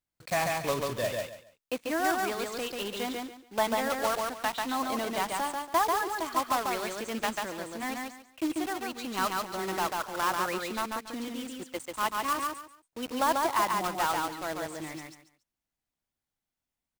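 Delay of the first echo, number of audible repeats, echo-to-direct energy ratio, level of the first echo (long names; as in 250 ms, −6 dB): 141 ms, 3, −2.5 dB, −3.0 dB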